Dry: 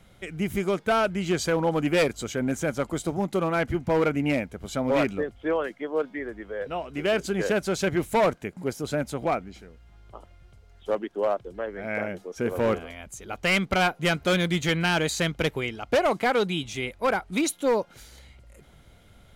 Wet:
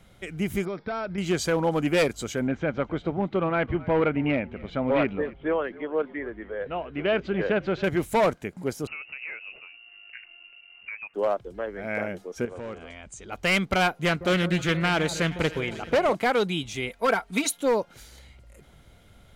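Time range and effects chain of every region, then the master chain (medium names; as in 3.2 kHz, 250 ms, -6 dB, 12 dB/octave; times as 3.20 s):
0.65–1.18 s: peaking EQ 2.9 kHz -13.5 dB 0.2 oct + compression 12:1, threshold -27 dBFS + brick-wall FIR low-pass 5.7 kHz
2.47–7.84 s: low-pass 3.3 kHz 24 dB/octave + frequency-shifting echo 266 ms, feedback 35%, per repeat -52 Hz, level -20 dB
8.87–11.14 s: compression 10:1, threshold -33 dBFS + frequency inversion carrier 2.8 kHz
12.45–13.32 s: Chebyshev low-pass 9.1 kHz, order 6 + compression 3:1, threshold -37 dBFS
14.05–16.15 s: peaking EQ 13 kHz -3.5 dB 2.2 oct + echo whose repeats swap between lows and highs 157 ms, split 1.2 kHz, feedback 76%, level -13 dB + loudspeaker Doppler distortion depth 0.18 ms
16.89–17.58 s: bass shelf 200 Hz -9.5 dB + comb 4.4 ms, depth 85%
whole clip: none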